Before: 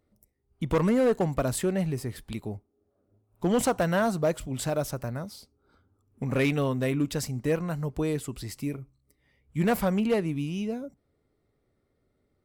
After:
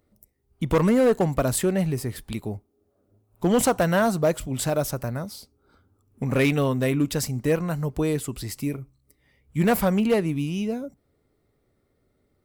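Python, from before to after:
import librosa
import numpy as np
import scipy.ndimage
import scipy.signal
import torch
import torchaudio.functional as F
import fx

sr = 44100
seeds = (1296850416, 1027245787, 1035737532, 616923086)

y = fx.high_shelf(x, sr, hz=11000.0, db=6.5)
y = F.gain(torch.from_numpy(y), 4.0).numpy()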